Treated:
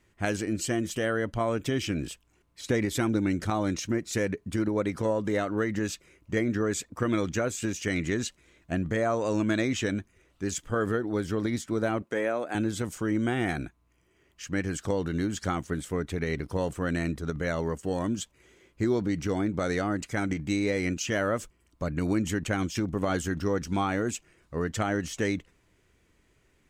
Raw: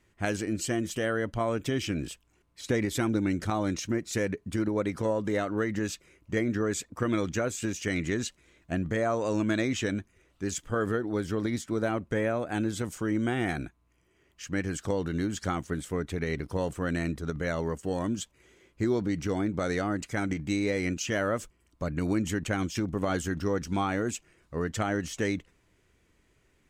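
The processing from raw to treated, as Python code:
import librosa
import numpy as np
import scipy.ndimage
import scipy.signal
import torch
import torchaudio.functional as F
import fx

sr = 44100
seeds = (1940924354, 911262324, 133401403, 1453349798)

y = fx.highpass(x, sr, hz=290.0, slope=12, at=(12.02, 12.55))
y = F.gain(torch.from_numpy(y), 1.0).numpy()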